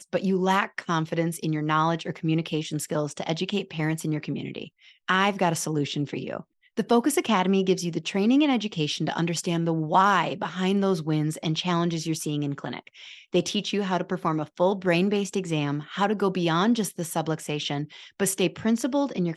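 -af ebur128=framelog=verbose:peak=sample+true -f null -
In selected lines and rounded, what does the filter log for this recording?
Integrated loudness:
  I:         -25.6 LUFS
  Threshold: -35.9 LUFS
Loudness range:
  LRA:         3.7 LU
  Threshold: -45.9 LUFS
  LRA low:   -27.7 LUFS
  LRA high:  -24.0 LUFS
Sample peak:
  Peak:       -8.1 dBFS
True peak:
  Peak:       -8.1 dBFS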